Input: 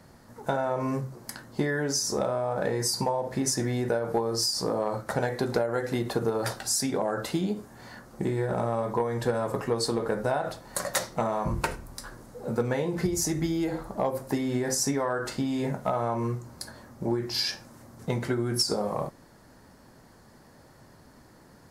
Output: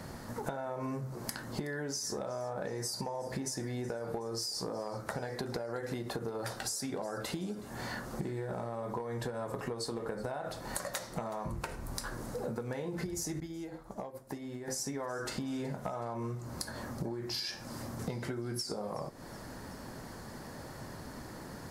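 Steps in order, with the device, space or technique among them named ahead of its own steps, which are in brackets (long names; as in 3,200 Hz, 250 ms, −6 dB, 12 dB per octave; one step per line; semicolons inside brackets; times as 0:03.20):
serial compression, leveller first (downward compressor 2.5 to 1, threshold −32 dBFS, peak gain reduction 8 dB; downward compressor 6 to 1, threshold −44 dBFS, peak gain reduction 15.5 dB)
feedback echo with a high-pass in the loop 372 ms, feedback 60%, level −20 dB
0:13.40–0:14.68: downward expander −40 dBFS
level +8.5 dB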